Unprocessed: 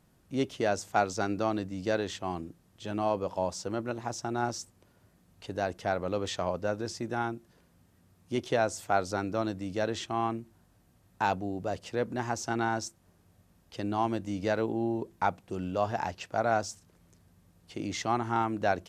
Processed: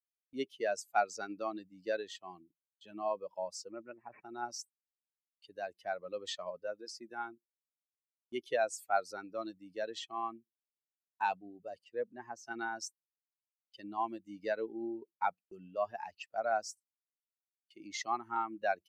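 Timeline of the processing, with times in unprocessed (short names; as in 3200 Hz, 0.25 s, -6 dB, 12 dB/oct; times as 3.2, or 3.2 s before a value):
3.71–4.25 careless resampling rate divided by 8×, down none, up filtered
6.61–7.26 bell 180 Hz -> 65 Hz -12.5 dB 0.44 oct
11.84–12.45 high shelf 3200 Hz -8.5 dB
whole clip: per-bin expansion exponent 2; HPF 430 Hz 12 dB/oct; gate with hold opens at -57 dBFS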